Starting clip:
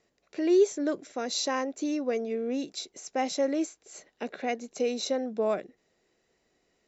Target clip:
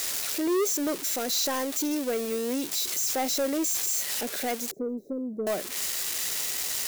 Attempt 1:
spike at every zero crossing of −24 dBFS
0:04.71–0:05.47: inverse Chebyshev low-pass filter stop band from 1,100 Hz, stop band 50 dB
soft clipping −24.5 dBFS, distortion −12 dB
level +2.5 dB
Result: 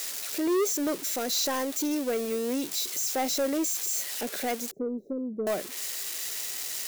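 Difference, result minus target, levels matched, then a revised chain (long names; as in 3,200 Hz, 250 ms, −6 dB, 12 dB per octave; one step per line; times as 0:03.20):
spike at every zero crossing: distortion −11 dB
spike at every zero crossing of −12.5 dBFS
0:04.71–0:05.47: inverse Chebyshev low-pass filter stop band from 1,100 Hz, stop band 50 dB
soft clipping −24.5 dBFS, distortion −6 dB
level +2.5 dB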